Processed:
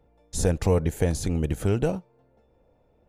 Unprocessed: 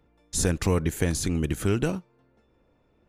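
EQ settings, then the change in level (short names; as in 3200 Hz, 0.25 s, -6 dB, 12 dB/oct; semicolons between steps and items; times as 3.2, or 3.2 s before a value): low shelf 210 Hz +8 dB; band shelf 630 Hz +8.5 dB 1.2 oct; -4.5 dB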